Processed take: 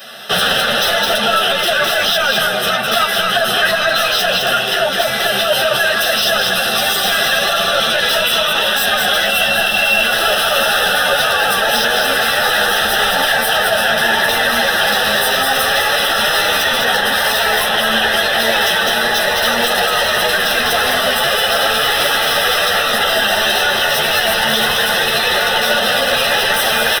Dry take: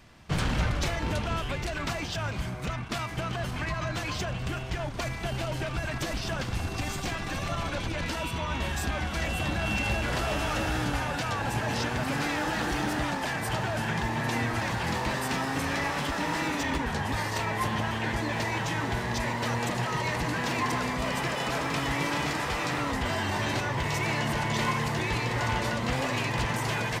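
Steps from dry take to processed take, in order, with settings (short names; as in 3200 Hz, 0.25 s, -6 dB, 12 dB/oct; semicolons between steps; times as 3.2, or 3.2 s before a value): HPF 240 Hz 24 dB/oct; high shelf 2900 Hz +12 dB; soft clip -28 dBFS, distortion -10 dB; Butterworth band-stop 4500 Hz, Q 6; fixed phaser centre 1500 Hz, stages 8; echo 0.208 s -4.5 dB; maximiser +28.5 dB; ensemble effect; gain -1.5 dB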